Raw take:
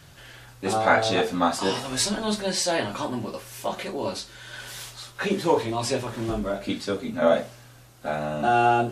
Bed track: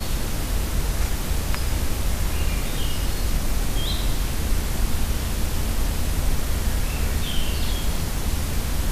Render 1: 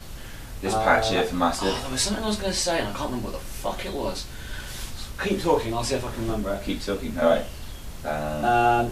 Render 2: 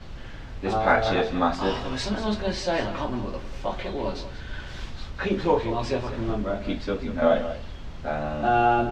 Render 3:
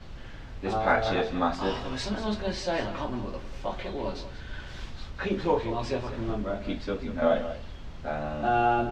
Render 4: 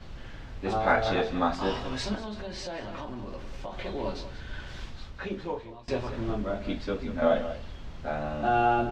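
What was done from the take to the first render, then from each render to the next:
mix in bed track −14 dB
high-frequency loss of the air 180 metres; single-tap delay 188 ms −12.5 dB
level −3.5 dB
0:02.15–0:03.78: downward compressor, threshold −33 dBFS; 0:04.71–0:05.88: fade out, to −23 dB

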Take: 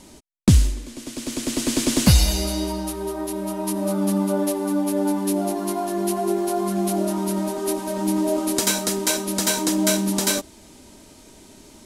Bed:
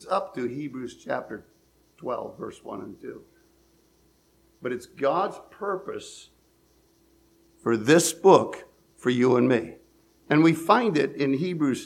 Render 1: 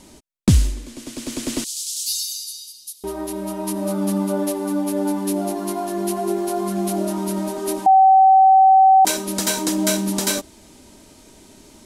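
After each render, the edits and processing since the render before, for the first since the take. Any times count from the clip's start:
0:01.64–0:03.04: inverse Chebyshev high-pass filter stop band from 1,600 Hz, stop band 50 dB
0:07.86–0:09.05: beep over 766 Hz −8 dBFS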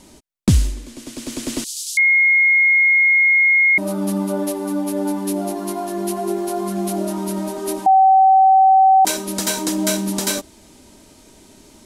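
0:01.97–0:03.78: beep over 2,150 Hz −10.5 dBFS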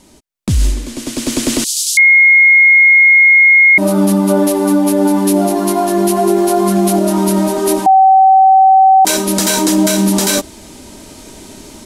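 brickwall limiter −15 dBFS, peak gain reduction 11.5 dB
automatic gain control gain up to 12.5 dB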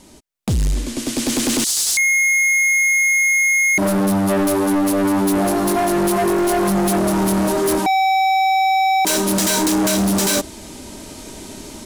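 gain into a clipping stage and back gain 15 dB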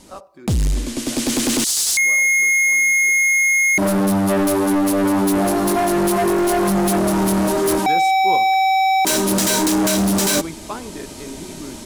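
mix in bed −11.5 dB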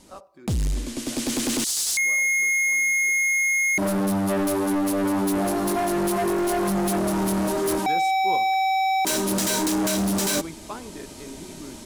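level −6 dB

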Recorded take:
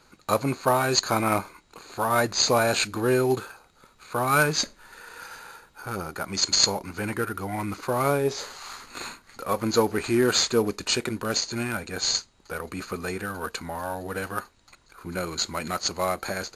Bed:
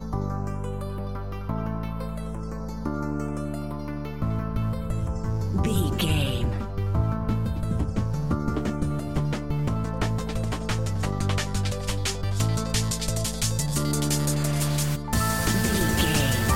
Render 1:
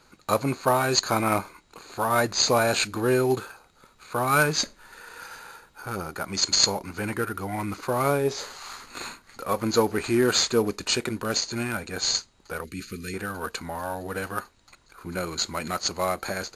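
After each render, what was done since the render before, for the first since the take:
0:12.64–0:13.14: Butterworth band-reject 810 Hz, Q 0.5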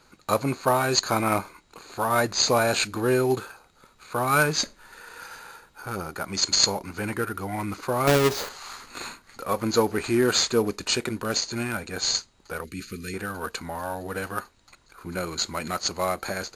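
0:08.07–0:08.49: each half-wave held at its own peak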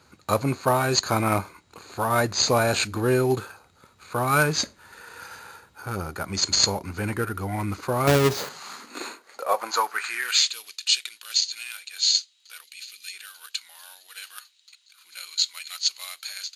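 high-pass filter sweep 81 Hz → 3,300 Hz, 0:08.16–0:10.55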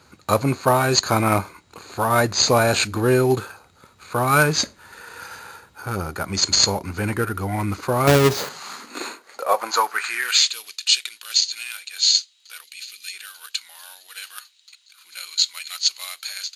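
level +4 dB
brickwall limiter −2 dBFS, peak gain reduction 2.5 dB

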